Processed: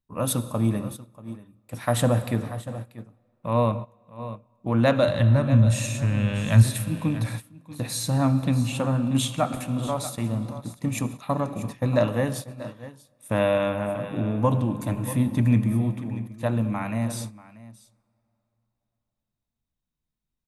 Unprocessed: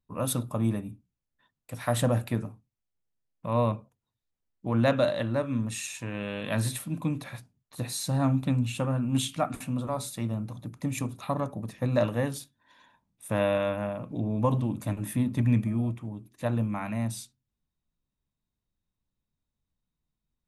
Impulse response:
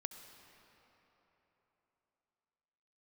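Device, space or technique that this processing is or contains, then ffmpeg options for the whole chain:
keyed gated reverb: -filter_complex "[0:a]asplit=3[a][b][c];[a]afade=t=out:st=5.07:d=0.02[d];[b]asubboost=boost=8:cutoff=130,afade=t=in:st=5.07:d=0.02,afade=t=out:st=6.62:d=0.02[e];[c]afade=t=in:st=6.62:d=0.02[f];[d][e][f]amix=inputs=3:normalize=0,aecho=1:1:637:0.211,asplit=3[g][h][i];[1:a]atrim=start_sample=2205[j];[h][j]afir=irnorm=-1:irlink=0[k];[i]apad=whole_len=931240[l];[k][l]sidechaingate=range=-19dB:threshold=-38dB:ratio=16:detection=peak,volume=4.5dB[m];[g][m]amix=inputs=2:normalize=0,volume=-3dB"

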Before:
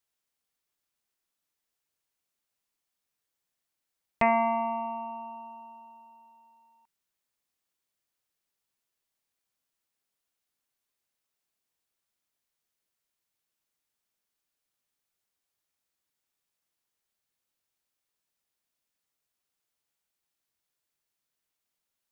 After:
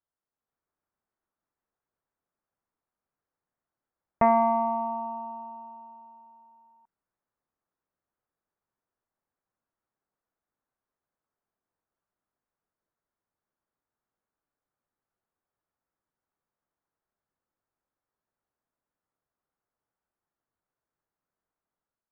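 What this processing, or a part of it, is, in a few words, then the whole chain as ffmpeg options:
action camera in a waterproof case: -af "lowpass=f=1.5k:w=0.5412,lowpass=f=1.5k:w=1.3066,dynaudnorm=f=130:g=7:m=6dB,volume=-2.5dB" -ar 48000 -c:a aac -b:a 128k

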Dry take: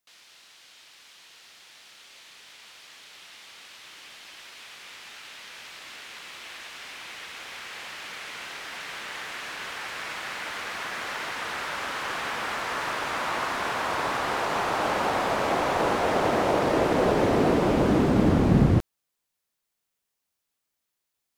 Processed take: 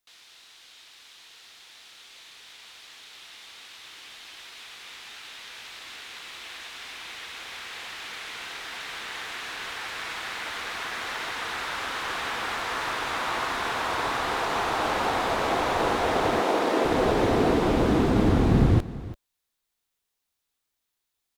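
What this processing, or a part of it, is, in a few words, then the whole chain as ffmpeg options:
low shelf boost with a cut just above: -filter_complex "[0:a]asettb=1/sr,asplit=3[a][b][c];[a]atrim=end=16.414[d];[b]atrim=start=16.41:end=16.85,asetpts=PTS-STARTPTS,afade=t=in:d=0.004:c=qsin,afade=t=out:st=0.436:d=0.004:c=qsin,highpass=f=200:w=0.5412,highpass=f=200:w=1.3066[e];[c]atrim=start=16.846[f];[d][e]acrossfade=d=0.004:c1=hsin:c2=qsin[g];[g][f]acrossfade=d=0.004:c1=qsin:c2=hsin,lowshelf=f=65:g=7.5,equalizer=f=170:t=o:w=0.68:g=-4.5,equalizer=f=3.7k:t=o:w=0.33:g=4,bandreject=f=580:w=12,aecho=1:1:338:0.141"

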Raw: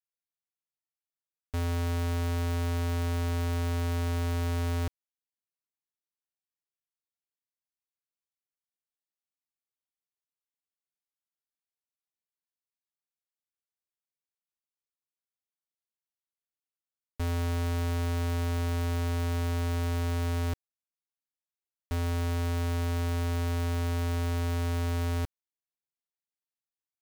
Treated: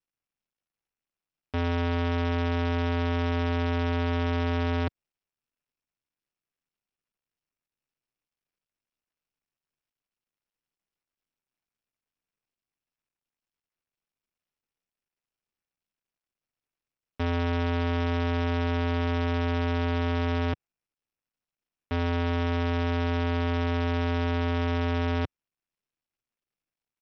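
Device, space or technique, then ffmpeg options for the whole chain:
Bluetooth headset: -af "highpass=110,aresample=8000,aresample=44100,volume=6.5dB" -ar 44100 -c:a sbc -b:a 64k

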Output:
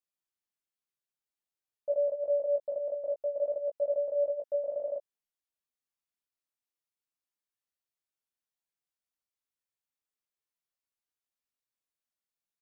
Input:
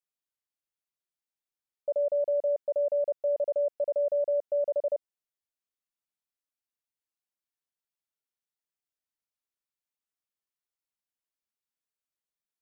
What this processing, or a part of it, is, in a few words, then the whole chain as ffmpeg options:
double-tracked vocal: -filter_complex "[0:a]asplit=2[a][b];[b]adelay=16,volume=-9.5dB[c];[a][c]amix=inputs=2:normalize=0,flanger=delay=17.5:depth=4.4:speed=0.52"

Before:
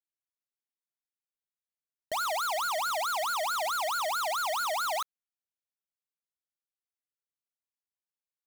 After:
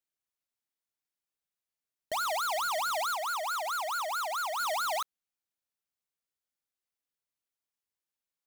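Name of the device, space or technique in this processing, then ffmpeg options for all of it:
limiter into clipper: -filter_complex "[0:a]asettb=1/sr,asplit=3[a][b][c];[a]atrim=end=3.144[d];[b]atrim=start=3.14:end=4.6,asetpts=PTS-STARTPTS,afade=t=in:d=0.004:c=qsin,afade=t=out:st=1.456:d=0.004:c=qsin,highpass=290[e];[c]atrim=start=4.596[f];[d][e]acrossfade=d=0.004:c1=hsin:c2=qsin[g];[g][f]acrossfade=d=0.004:c1=qsin:c2=hsin,alimiter=level_in=5.5dB:limit=-24dB:level=0:latency=1,volume=-5.5dB,asoftclip=type=hard:threshold=-33dB,volume=2dB"

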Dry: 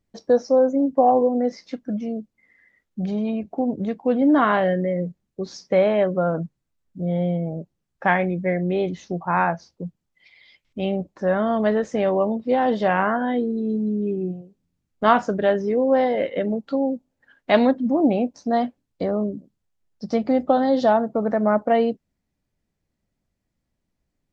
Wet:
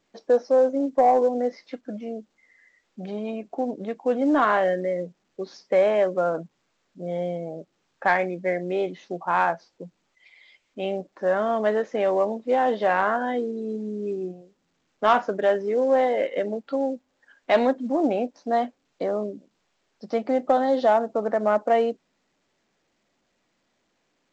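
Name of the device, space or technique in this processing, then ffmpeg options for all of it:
telephone: -af "highpass=340,lowpass=3.6k,asoftclip=type=tanh:threshold=-7.5dB" -ar 16000 -c:a pcm_alaw

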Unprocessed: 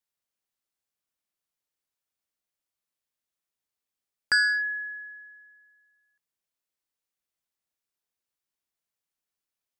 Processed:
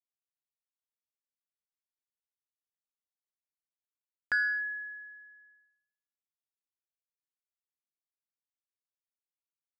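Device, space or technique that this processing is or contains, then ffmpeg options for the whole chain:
hearing-loss simulation: -af "lowpass=2k,agate=range=-33dB:threshold=-57dB:ratio=3:detection=peak,volume=-4dB"

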